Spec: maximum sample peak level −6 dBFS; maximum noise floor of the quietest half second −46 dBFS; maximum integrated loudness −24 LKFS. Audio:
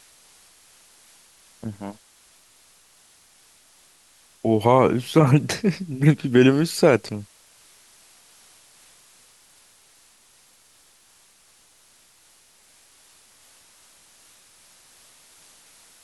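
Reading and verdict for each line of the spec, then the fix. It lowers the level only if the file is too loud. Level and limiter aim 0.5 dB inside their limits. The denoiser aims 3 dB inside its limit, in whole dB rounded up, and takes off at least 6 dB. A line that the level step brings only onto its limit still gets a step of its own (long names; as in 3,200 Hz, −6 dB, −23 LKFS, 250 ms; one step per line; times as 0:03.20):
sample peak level −4.0 dBFS: out of spec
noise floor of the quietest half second −57 dBFS: in spec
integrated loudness −20.0 LKFS: out of spec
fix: level −4.5 dB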